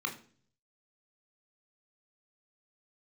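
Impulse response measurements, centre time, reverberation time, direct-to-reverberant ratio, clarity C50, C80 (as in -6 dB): 14 ms, 0.45 s, 2.5 dB, 12.0 dB, 16.5 dB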